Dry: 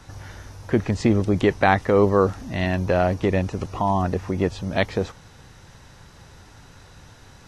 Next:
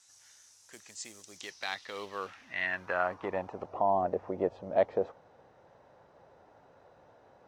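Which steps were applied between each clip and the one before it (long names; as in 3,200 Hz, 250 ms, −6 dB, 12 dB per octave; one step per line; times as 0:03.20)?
floating-point word with a short mantissa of 4 bits
band-pass filter sweep 7,500 Hz → 600 Hz, 0:01.19–0:03.80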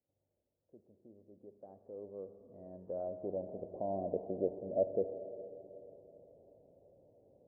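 elliptic low-pass filter 590 Hz, stop band 80 dB
four-comb reverb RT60 3.6 s, combs from 27 ms, DRR 8.5 dB
level −3 dB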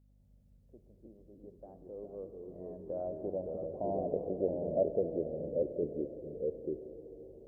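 mains hum 50 Hz, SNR 25 dB
delay with pitch and tempo change per echo 205 ms, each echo −2 semitones, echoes 2
level +1.5 dB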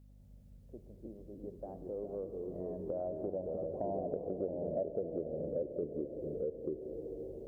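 downward compressor 3 to 1, threshold −44 dBFS, peak gain reduction 15 dB
level +7 dB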